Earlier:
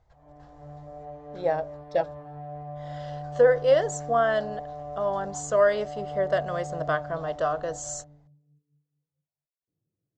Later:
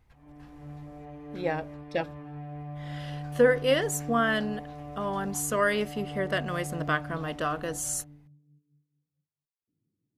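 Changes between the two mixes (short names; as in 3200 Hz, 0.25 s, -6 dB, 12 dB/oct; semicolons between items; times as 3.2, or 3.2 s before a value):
speech: remove elliptic low-pass 7400 Hz, stop band 40 dB; master: add fifteen-band EQ 250 Hz +12 dB, 630 Hz -11 dB, 2500 Hz +11 dB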